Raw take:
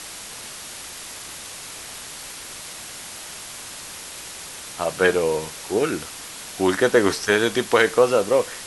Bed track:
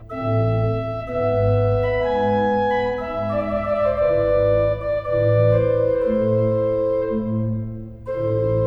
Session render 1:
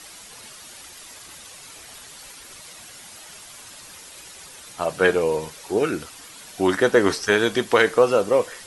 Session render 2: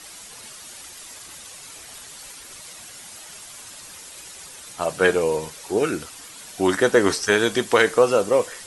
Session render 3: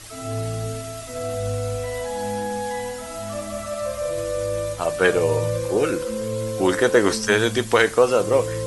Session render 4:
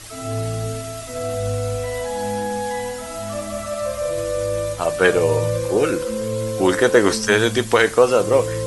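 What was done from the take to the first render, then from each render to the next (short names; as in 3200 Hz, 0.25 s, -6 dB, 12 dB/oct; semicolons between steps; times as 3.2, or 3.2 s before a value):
denoiser 9 dB, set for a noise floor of -37 dBFS
dynamic EQ 8100 Hz, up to +6 dB, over -46 dBFS, Q 1.1
add bed track -8 dB
gain +2.5 dB; limiter -1 dBFS, peak gain reduction 1.5 dB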